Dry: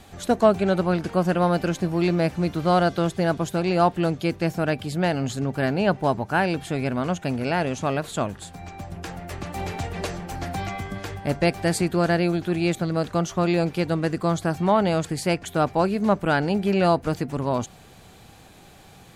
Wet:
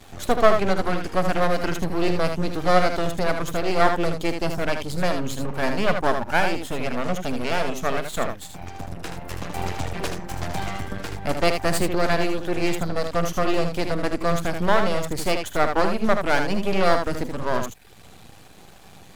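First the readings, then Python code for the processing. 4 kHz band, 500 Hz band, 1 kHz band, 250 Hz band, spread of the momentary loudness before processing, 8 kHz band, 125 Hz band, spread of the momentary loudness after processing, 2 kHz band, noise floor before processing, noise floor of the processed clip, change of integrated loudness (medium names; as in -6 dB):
+3.0 dB, 0.0 dB, +1.0 dB, -3.5 dB, 11 LU, +1.5 dB, -4.5 dB, 10 LU, +3.0 dB, -49 dBFS, -46 dBFS, -0.5 dB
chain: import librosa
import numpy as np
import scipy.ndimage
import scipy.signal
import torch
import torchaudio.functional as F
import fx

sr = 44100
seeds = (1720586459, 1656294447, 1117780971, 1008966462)

y = fx.dereverb_blind(x, sr, rt60_s=0.62)
y = np.maximum(y, 0.0)
y = fx.room_early_taps(y, sr, ms=(47, 78), db=(-16.5, -6.5))
y = y * librosa.db_to_amplitude(5.5)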